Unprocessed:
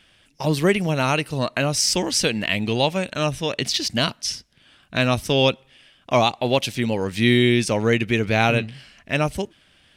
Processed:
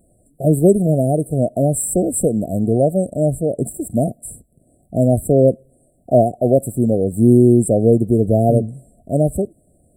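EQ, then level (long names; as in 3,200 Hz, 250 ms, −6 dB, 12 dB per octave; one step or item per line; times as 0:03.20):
linear-phase brick-wall band-stop 750–7,500 Hz
+7.0 dB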